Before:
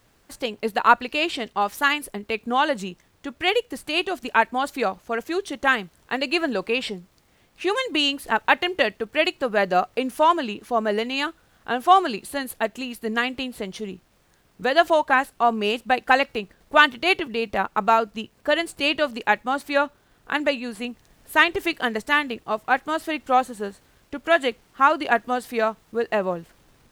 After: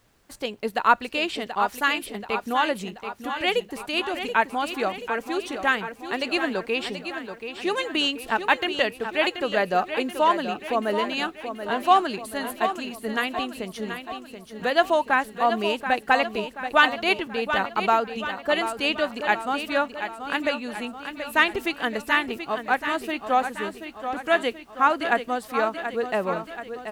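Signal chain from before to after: feedback echo 0.731 s, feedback 54%, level -9 dB; gain -2.5 dB

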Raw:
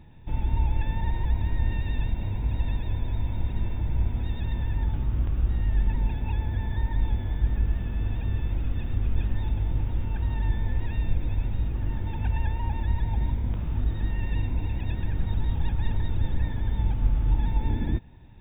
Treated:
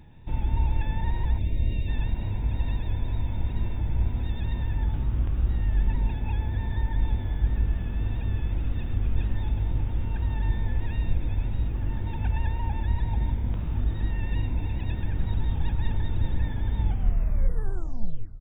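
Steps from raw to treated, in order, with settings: tape stop at the end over 1.59 s; on a send: frequency-shifting echo 0.284 s, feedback 59%, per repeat -38 Hz, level -23 dB; on the sum: wow and flutter 26 cents; spectral gain 1.39–1.89, 690–2000 Hz -13 dB

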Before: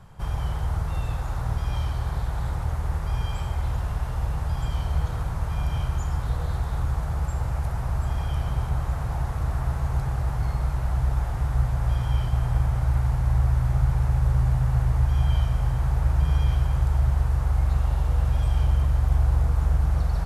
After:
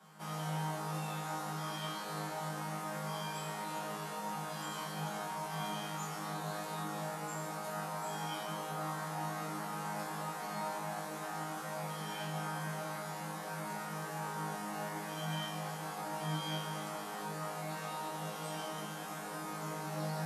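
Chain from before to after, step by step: Chebyshev high-pass 160 Hz, order 8; high shelf 3600 Hz +7.5 dB; resonator bank G#2 fifth, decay 0.7 s; gain +13.5 dB

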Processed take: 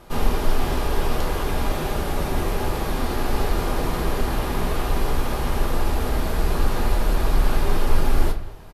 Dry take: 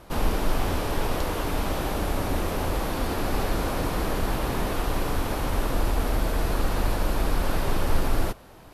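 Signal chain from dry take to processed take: speakerphone echo 0.21 s, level -17 dB; reverb RT60 0.35 s, pre-delay 5 ms, DRR 4 dB

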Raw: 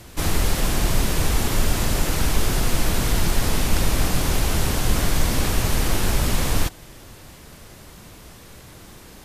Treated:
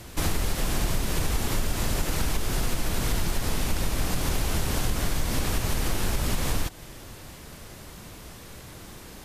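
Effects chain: compressor, threshold -21 dBFS, peak gain reduction 10 dB

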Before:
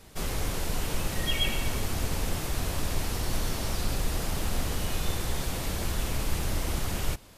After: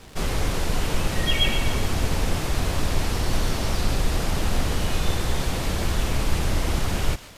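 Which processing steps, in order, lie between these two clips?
crackle 160/s -37 dBFS; high shelf 9300 Hz -11.5 dB; thinning echo 0.141 s, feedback 56%, high-pass 1200 Hz, level -14 dB; gain +6.5 dB

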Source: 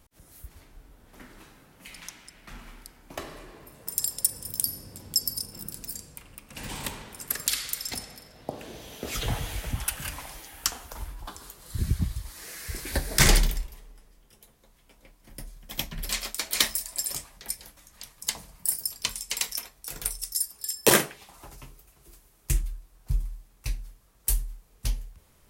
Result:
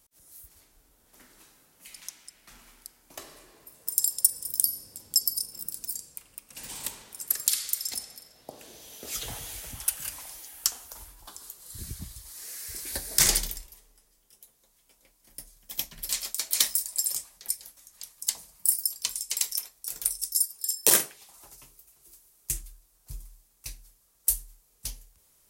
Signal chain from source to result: tone controls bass -6 dB, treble +12 dB; gain -8.5 dB

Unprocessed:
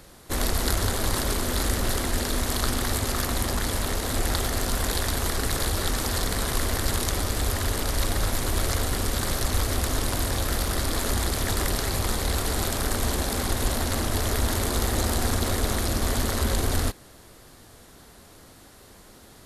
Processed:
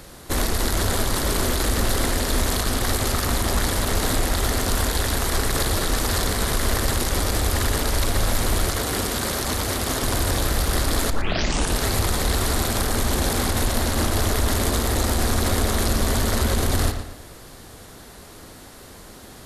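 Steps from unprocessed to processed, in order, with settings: limiter -18.5 dBFS, peak gain reduction 11 dB; 8.65–10.03 HPF 120 Hz 6 dB/oct; 11.1 tape start 0.67 s; darkening echo 0.116 s, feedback 37%, low-pass 4800 Hz, level -8 dB; gain +6.5 dB

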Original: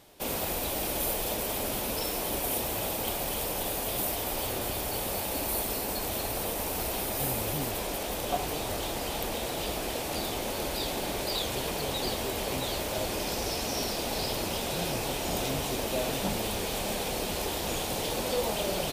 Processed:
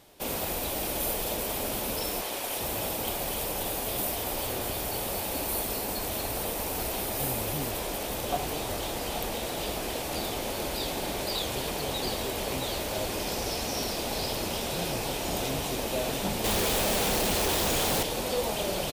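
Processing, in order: 2.21–2.61 weighting filter A; on a send: echo 0.835 s -13 dB; 16.44–18.03 on the sum: companded quantiser 2-bit

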